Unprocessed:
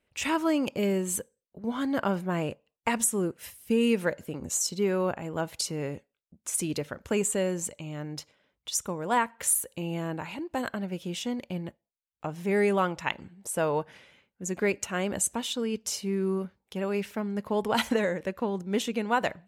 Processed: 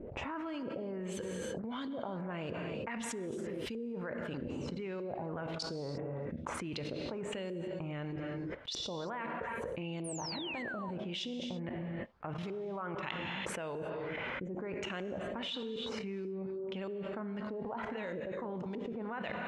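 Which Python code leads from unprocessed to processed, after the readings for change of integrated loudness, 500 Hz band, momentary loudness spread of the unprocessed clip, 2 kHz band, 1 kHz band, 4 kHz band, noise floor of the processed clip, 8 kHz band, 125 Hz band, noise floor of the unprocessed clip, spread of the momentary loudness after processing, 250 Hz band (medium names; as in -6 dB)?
-10.0 dB, -9.5 dB, 11 LU, -8.0 dB, -10.5 dB, -5.5 dB, -42 dBFS, -19.5 dB, -6.5 dB, -85 dBFS, 2 LU, -9.5 dB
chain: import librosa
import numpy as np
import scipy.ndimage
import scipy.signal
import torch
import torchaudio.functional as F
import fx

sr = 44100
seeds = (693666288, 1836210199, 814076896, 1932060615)

y = fx.level_steps(x, sr, step_db=20)
y = fx.filter_lfo_lowpass(y, sr, shape='saw_up', hz=1.6, low_hz=360.0, high_hz=4900.0, q=2.1)
y = fx.rev_gated(y, sr, seeds[0], gate_ms=360, shape='flat', drr_db=8.5)
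y = fx.spec_paint(y, sr, seeds[1], shape='fall', start_s=10.04, length_s=0.87, low_hz=880.0, high_hz=10000.0, level_db=-43.0)
y = fx.env_flatten(y, sr, amount_pct=100)
y = y * 10.0 ** (-6.5 / 20.0)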